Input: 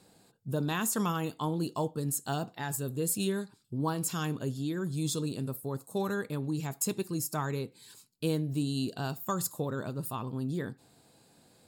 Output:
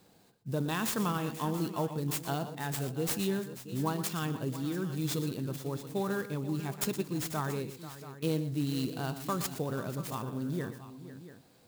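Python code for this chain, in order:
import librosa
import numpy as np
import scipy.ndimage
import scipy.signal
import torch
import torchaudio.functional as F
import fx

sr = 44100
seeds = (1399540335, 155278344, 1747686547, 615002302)

y = fx.echo_multitap(x, sr, ms=(119, 488, 683), db=(-12.5, -14.5, -15.0))
y = fx.clock_jitter(y, sr, seeds[0], jitter_ms=0.027)
y = F.gain(torch.from_numpy(y), -1.0).numpy()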